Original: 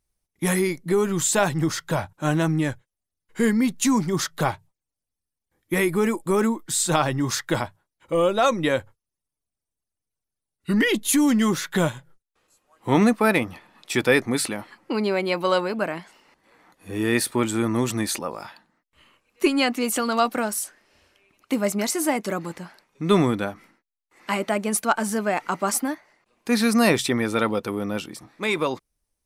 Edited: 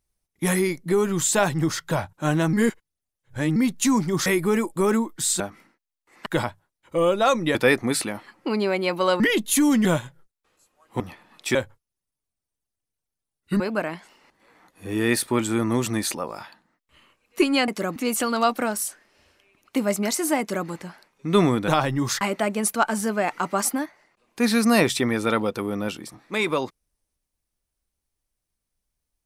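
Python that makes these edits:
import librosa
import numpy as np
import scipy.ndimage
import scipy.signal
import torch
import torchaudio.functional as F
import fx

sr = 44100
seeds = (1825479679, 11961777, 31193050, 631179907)

y = fx.edit(x, sr, fx.reverse_span(start_s=2.53, length_s=1.03),
    fx.cut(start_s=4.26, length_s=1.5),
    fx.swap(start_s=6.9, length_s=0.53, other_s=23.44, other_length_s=0.86),
    fx.swap(start_s=8.72, length_s=2.05, other_s=13.99, other_length_s=1.65),
    fx.cut(start_s=11.42, length_s=0.34),
    fx.cut(start_s=12.91, length_s=0.53),
    fx.duplicate(start_s=22.16, length_s=0.28, to_s=19.72), tone=tone)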